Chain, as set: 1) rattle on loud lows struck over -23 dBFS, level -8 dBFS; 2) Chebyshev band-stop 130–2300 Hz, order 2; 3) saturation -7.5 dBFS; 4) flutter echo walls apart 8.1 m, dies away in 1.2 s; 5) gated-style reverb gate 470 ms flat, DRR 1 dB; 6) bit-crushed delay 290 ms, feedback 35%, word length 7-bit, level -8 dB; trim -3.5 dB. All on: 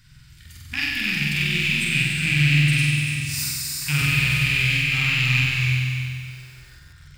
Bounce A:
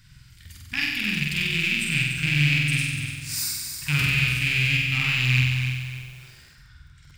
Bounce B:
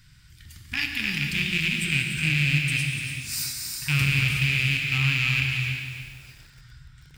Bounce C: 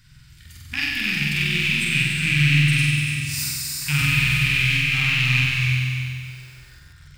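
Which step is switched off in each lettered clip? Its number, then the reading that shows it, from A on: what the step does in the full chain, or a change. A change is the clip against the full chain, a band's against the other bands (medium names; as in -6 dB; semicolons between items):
5, crest factor change +2.0 dB; 4, loudness change -3.5 LU; 3, distortion -24 dB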